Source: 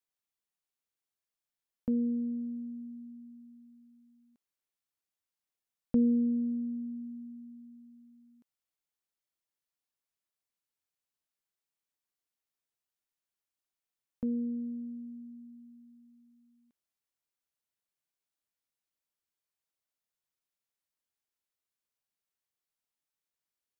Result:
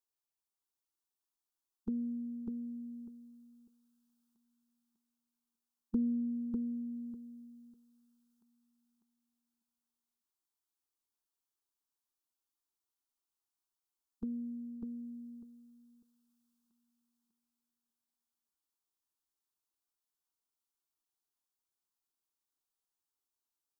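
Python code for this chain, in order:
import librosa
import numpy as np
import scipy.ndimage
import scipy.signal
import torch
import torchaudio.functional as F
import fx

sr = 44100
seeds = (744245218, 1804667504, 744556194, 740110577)

p1 = fx.dynamic_eq(x, sr, hz=440.0, q=1.0, threshold_db=-46.0, ratio=4.0, max_db=5)
p2 = fx.formant_shift(p1, sr, semitones=-3)
p3 = fx.fixed_phaser(p2, sr, hz=560.0, stages=6)
p4 = p3 + fx.echo_feedback(p3, sr, ms=598, feedback_pct=19, wet_db=-4, dry=0)
y = F.gain(torch.from_numpy(p4), -1.0).numpy()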